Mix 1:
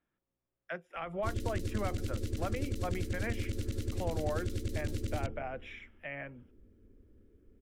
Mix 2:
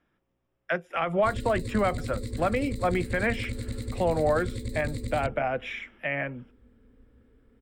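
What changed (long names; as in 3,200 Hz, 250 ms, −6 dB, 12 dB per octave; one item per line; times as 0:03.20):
speech +12.0 dB
background: add EQ curve with evenly spaced ripples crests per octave 0.98, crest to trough 15 dB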